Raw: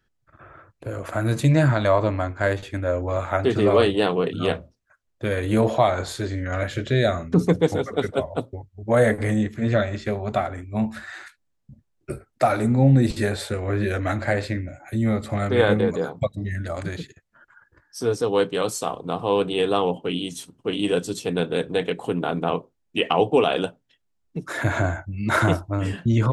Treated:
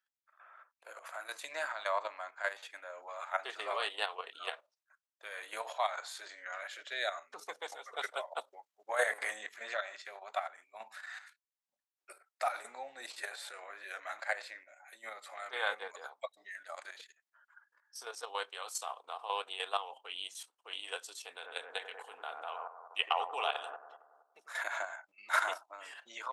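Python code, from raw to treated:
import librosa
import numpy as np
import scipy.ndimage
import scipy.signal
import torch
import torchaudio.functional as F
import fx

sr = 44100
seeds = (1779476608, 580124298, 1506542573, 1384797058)

y = fx.low_shelf(x, sr, hz=310.0, db=-12.0, at=(5.61, 6.17))
y = fx.echo_bbd(y, sr, ms=94, stages=1024, feedback_pct=62, wet_db=-6, at=(21.44, 24.52), fade=0.02)
y = fx.edit(y, sr, fx.clip_gain(start_s=7.93, length_s=1.84, db=5.5), tone=tone)
y = fx.level_steps(y, sr, step_db=10)
y = scipy.signal.sosfilt(scipy.signal.butter(4, 770.0, 'highpass', fs=sr, output='sos'), y)
y = y * librosa.db_to_amplitude(-5.5)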